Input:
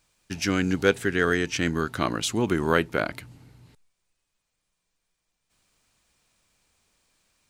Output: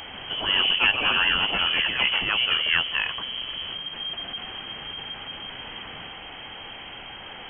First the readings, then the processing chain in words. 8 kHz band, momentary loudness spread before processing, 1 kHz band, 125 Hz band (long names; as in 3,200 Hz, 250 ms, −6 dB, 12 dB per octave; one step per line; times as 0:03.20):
below −35 dB, 7 LU, +1.0 dB, −12.0 dB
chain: converter with a step at zero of −27.5 dBFS
delay with pitch and tempo change per echo 137 ms, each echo +4 semitones, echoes 3
voice inversion scrambler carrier 3,200 Hz
level −2.5 dB